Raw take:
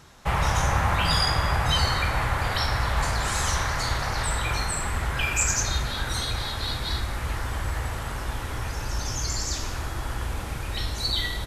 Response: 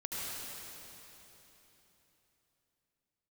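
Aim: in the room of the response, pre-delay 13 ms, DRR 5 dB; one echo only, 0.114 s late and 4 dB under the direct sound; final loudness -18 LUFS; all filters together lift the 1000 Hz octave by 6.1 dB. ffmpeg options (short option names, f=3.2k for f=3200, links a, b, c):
-filter_complex "[0:a]equalizer=f=1k:t=o:g=7.5,aecho=1:1:114:0.631,asplit=2[a][b];[1:a]atrim=start_sample=2205,adelay=13[c];[b][c]afir=irnorm=-1:irlink=0,volume=-8.5dB[d];[a][d]amix=inputs=2:normalize=0,volume=3.5dB"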